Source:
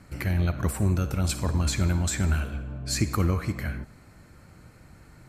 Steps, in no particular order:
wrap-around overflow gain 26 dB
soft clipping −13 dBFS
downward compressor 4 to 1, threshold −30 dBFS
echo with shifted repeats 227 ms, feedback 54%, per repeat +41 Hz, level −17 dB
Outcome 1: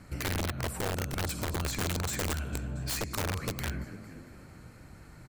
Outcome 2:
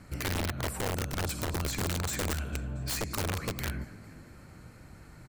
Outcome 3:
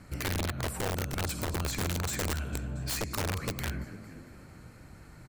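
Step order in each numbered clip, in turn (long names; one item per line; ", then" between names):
echo with shifted repeats, then downward compressor, then soft clipping, then wrap-around overflow
soft clipping, then downward compressor, then echo with shifted repeats, then wrap-around overflow
soft clipping, then echo with shifted repeats, then downward compressor, then wrap-around overflow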